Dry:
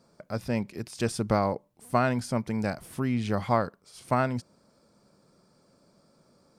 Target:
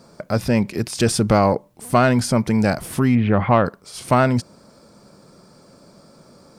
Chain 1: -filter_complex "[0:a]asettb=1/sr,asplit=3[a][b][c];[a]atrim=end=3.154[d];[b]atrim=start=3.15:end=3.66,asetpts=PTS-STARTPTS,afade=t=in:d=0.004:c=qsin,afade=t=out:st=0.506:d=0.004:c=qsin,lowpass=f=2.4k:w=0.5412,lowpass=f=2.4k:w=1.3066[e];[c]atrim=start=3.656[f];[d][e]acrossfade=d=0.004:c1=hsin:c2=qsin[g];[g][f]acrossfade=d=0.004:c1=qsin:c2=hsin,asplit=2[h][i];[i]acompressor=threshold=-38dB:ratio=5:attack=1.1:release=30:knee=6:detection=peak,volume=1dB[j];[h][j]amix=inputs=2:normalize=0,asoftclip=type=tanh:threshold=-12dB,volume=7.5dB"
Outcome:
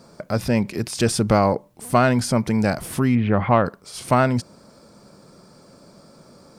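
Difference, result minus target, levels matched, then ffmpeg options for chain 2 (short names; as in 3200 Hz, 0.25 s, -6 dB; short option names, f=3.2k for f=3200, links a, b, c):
compressor: peak gain reduction +8 dB
-filter_complex "[0:a]asettb=1/sr,asplit=3[a][b][c];[a]atrim=end=3.154[d];[b]atrim=start=3.15:end=3.66,asetpts=PTS-STARTPTS,afade=t=in:d=0.004:c=qsin,afade=t=out:st=0.506:d=0.004:c=qsin,lowpass=f=2.4k:w=0.5412,lowpass=f=2.4k:w=1.3066[e];[c]atrim=start=3.656[f];[d][e]acrossfade=d=0.004:c1=hsin:c2=qsin[g];[g][f]acrossfade=d=0.004:c1=qsin:c2=hsin,asplit=2[h][i];[i]acompressor=threshold=-28dB:ratio=5:attack=1.1:release=30:knee=6:detection=peak,volume=1dB[j];[h][j]amix=inputs=2:normalize=0,asoftclip=type=tanh:threshold=-12dB,volume=7.5dB"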